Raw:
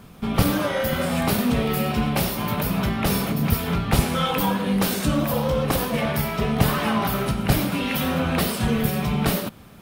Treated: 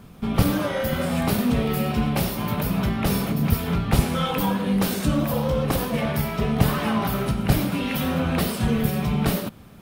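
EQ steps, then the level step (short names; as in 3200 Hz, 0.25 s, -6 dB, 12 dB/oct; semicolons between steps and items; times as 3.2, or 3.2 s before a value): low shelf 440 Hz +4 dB; -3.0 dB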